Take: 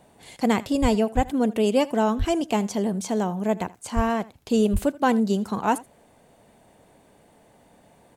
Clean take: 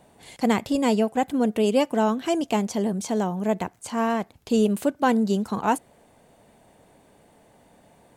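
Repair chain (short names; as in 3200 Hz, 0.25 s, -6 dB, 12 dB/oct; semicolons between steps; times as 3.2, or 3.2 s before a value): de-plosive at 0.81/1.15/2.18/3.95/4.72; inverse comb 80 ms -21 dB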